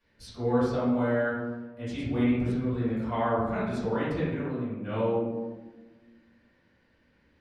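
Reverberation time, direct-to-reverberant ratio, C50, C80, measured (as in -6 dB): 1.2 s, -13.5 dB, -1.0 dB, 2.5 dB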